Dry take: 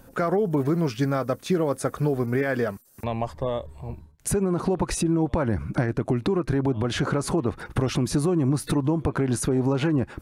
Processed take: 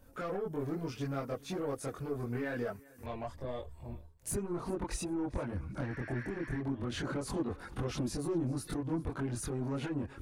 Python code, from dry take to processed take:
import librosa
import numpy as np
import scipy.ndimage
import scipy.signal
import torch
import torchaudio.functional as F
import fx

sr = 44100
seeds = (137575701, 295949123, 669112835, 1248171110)

y = fx.high_shelf(x, sr, hz=10000.0, db=9.0, at=(3.33, 4.41))
y = fx.spec_repair(y, sr, seeds[0], start_s=5.9, length_s=0.66, low_hz=940.0, high_hz=5800.0, source='before')
y = 10.0 ** (-19.0 / 20.0) * np.tanh(y / 10.0 ** (-19.0 / 20.0))
y = fx.chorus_voices(y, sr, voices=6, hz=0.54, base_ms=23, depth_ms=2.3, mix_pct=55)
y = fx.echo_feedback(y, sr, ms=396, feedback_pct=30, wet_db=-22.5)
y = y * librosa.db_to_amplitude(-7.5)